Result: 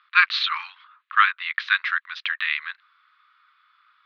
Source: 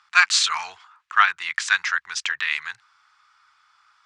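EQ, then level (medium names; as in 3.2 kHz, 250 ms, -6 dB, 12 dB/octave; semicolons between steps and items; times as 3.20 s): elliptic band-pass 1.1–3.9 kHz, stop band 40 dB; 0.0 dB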